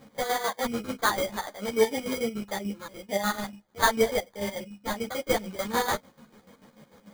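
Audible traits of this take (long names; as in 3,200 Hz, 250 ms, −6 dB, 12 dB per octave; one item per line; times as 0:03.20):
a quantiser's noise floor 12 bits, dither none
chopped level 6.8 Hz, depth 65%, duty 50%
aliases and images of a low sample rate 2,700 Hz, jitter 0%
a shimmering, thickened sound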